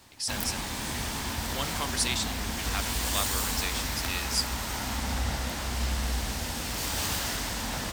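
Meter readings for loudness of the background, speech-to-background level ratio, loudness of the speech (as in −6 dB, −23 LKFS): −30.5 LKFS, −2.5 dB, −33.0 LKFS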